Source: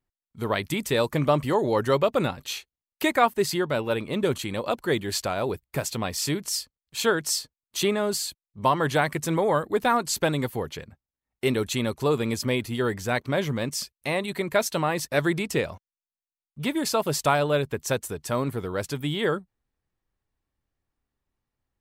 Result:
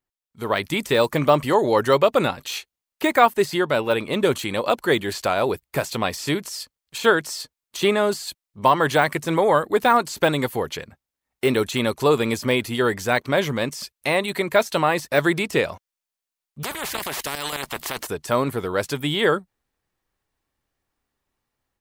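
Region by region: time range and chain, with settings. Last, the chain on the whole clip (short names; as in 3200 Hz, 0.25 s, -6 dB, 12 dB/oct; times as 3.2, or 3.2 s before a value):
16.63–18.07 low shelf 170 Hz -9 dB + level quantiser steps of 11 dB + spectral compressor 10:1
whole clip: de-esser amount 75%; low shelf 250 Hz -9 dB; AGC gain up to 8 dB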